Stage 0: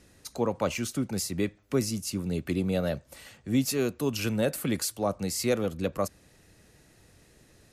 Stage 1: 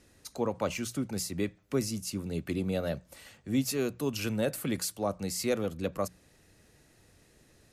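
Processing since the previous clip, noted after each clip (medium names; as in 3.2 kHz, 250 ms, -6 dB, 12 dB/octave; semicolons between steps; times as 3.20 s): hum notches 60/120/180 Hz; trim -3 dB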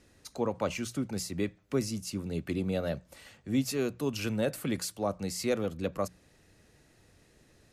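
treble shelf 9.7 kHz -7.5 dB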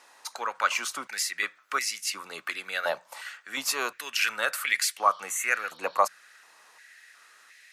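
spectral replace 5.00–5.97 s, 2.9–5.8 kHz both; step-sequenced high-pass 2.8 Hz 920–2000 Hz; trim +8.5 dB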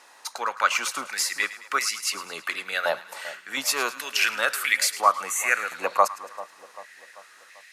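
two-band feedback delay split 1 kHz, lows 391 ms, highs 107 ms, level -15 dB; trim +3.5 dB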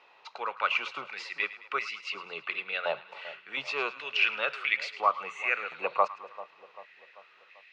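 cabinet simulation 110–3600 Hz, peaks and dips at 140 Hz +8 dB, 260 Hz -8 dB, 420 Hz +5 dB, 1.7 kHz -8 dB, 2.6 kHz +7 dB; trim -5.5 dB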